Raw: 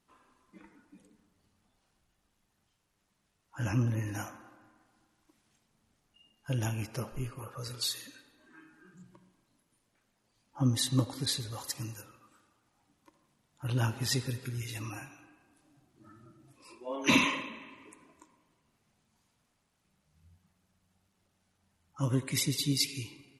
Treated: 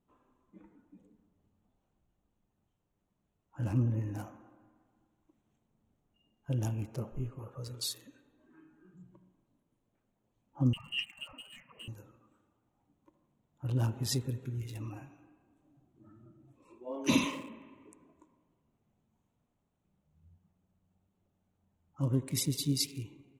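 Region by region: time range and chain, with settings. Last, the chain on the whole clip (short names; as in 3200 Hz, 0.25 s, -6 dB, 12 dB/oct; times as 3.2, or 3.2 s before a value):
10.73–11.88 HPF 110 Hz + inverted band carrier 3000 Hz + core saturation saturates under 950 Hz
whole clip: Wiener smoothing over 9 samples; bell 1800 Hz -11.5 dB 1.8 oct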